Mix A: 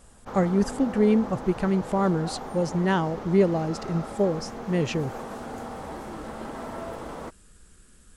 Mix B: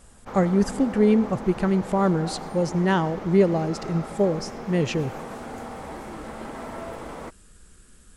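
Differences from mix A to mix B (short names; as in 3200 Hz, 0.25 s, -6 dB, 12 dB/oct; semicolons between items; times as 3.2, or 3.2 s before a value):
background: add bell 2200 Hz +4.5 dB 0.5 oct; reverb: on, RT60 1.3 s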